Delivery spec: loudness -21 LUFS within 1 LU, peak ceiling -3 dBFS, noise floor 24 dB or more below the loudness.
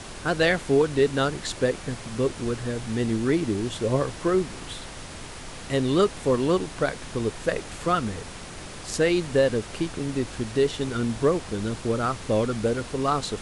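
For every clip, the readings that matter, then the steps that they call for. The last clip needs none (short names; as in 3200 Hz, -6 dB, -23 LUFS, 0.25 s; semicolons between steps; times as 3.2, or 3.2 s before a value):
noise floor -39 dBFS; noise floor target -50 dBFS; loudness -25.5 LUFS; peak -9.0 dBFS; loudness target -21.0 LUFS
-> noise print and reduce 11 dB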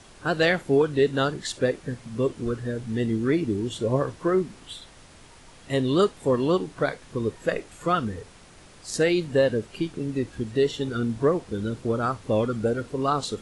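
noise floor -50 dBFS; loudness -25.5 LUFS; peak -9.0 dBFS; loudness target -21.0 LUFS
-> gain +4.5 dB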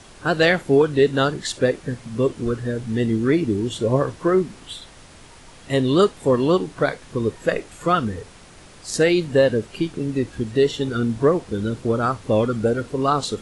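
loudness -21.0 LUFS; peak -4.5 dBFS; noise floor -45 dBFS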